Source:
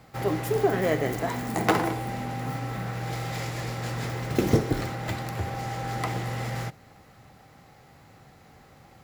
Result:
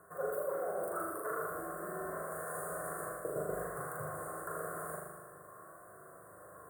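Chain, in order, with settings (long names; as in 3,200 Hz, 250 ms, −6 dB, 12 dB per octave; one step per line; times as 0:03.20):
high-pass filter 340 Hz 6 dB per octave
reversed playback
downward compressor 6 to 1, threshold −38 dBFS, peak gain reduction 19 dB
reversed playback
phaser with its sweep stopped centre 660 Hz, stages 6
wrong playback speed 33 rpm record played at 45 rpm
elliptic band-stop filter 1,400–8,800 Hz, stop band 40 dB
on a send: flutter between parallel walls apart 6.8 metres, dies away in 1.1 s
on the sum: level +4 dB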